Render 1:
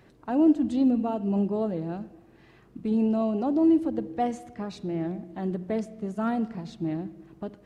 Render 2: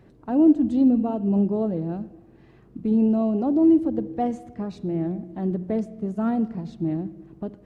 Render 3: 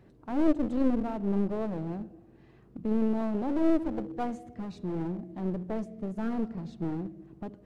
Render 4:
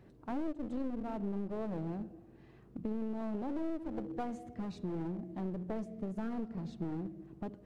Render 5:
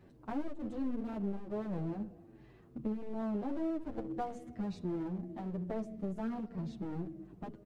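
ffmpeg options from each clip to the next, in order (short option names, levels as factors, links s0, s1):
-af "tiltshelf=f=770:g=5.5"
-af "aeval=exprs='clip(val(0),-1,0.0299)':c=same,volume=0.596"
-af "acompressor=threshold=0.0251:ratio=6,volume=0.841"
-filter_complex "[0:a]asplit=2[s0][s1];[s1]adelay=8.2,afreqshift=-2.3[s2];[s0][s2]amix=inputs=2:normalize=1,volume=1.41"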